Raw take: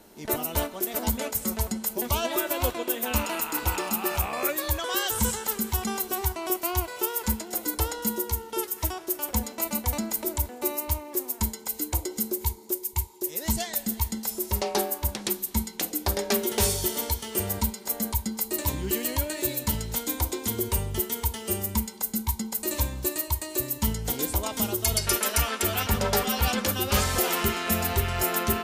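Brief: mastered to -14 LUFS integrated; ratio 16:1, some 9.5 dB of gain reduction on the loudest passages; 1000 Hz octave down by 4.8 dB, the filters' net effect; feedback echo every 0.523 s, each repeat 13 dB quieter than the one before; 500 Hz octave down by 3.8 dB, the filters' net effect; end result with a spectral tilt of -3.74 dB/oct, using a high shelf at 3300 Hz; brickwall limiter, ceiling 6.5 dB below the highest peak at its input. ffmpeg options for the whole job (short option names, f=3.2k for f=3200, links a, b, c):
-af "equalizer=f=500:t=o:g=-4,equalizer=f=1k:t=o:g=-4,highshelf=f=3.3k:g=-8.5,acompressor=threshold=-31dB:ratio=16,alimiter=level_in=2.5dB:limit=-24dB:level=0:latency=1,volume=-2.5dB,aecho=1:1:523|1046|1569:0.224|0.0493|0.0108,volume=23.5dB"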